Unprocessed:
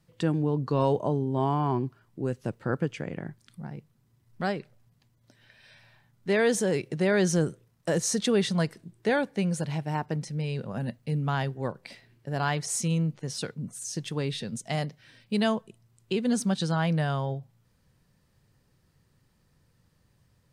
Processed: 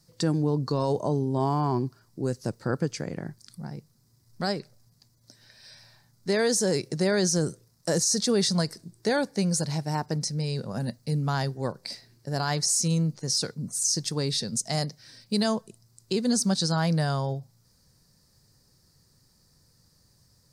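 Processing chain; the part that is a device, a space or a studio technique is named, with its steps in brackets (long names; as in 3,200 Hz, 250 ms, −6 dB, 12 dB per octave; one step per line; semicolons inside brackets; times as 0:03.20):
over-bright horn tweeter (high shelf with overshoot 3,800 Hz +8 dB, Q 3; brickwall limiter −17 dBFS, peak gain reduction 11 dB)
level +1.5 dB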